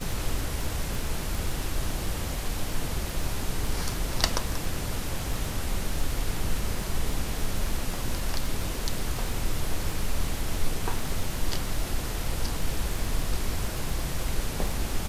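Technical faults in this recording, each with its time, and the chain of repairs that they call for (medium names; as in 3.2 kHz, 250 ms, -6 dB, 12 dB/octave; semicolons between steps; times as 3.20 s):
crackle 23 per s -29 dBFS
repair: de-click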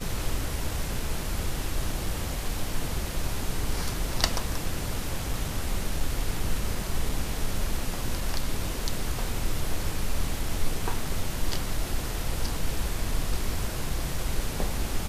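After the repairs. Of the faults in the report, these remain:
nothing left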